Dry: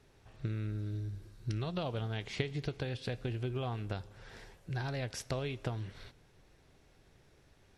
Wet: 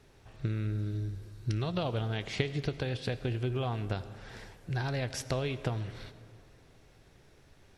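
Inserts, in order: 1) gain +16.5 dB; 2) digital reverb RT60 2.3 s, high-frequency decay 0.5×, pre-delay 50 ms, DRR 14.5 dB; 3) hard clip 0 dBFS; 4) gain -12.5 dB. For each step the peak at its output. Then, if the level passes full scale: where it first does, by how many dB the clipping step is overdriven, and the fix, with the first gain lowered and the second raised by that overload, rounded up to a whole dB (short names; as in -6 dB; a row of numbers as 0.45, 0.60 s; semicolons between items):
-2.0, -2.0, -2.0, -14.5 dBFS; no overload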